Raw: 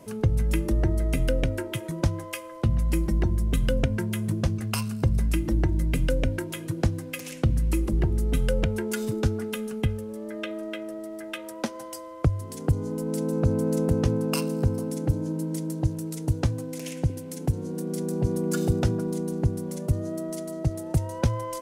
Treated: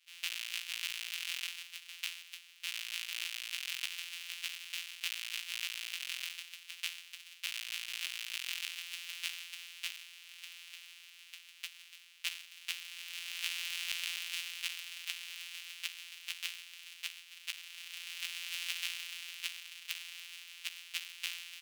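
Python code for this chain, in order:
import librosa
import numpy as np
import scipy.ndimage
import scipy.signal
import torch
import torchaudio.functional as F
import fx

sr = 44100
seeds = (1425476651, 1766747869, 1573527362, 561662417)

y = np.r_[np.sort(x[:len(x) // 256 * 256].reshape(-1, 256), axis=1).ravel(), x[len(x) // 256 * 256:]]
y = fx.ladder_highpass(y, sr, hz=2400.0, resonance_pct=55)
y = fx.band_widen(y, sr, depth_pct=40)
y = y * 10.0 ** (2.5 / 20.0)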